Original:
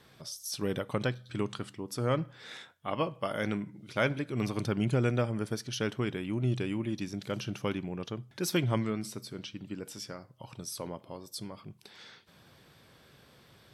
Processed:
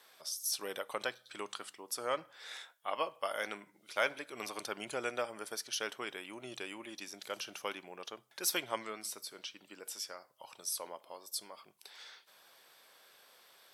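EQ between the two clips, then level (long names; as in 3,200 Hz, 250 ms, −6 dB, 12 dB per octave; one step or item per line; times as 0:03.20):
Chebyshev high-pass filter 690 Hz, order 2
high-shelf EQ 7,100 Hz +10.5 dB
−1.5 dB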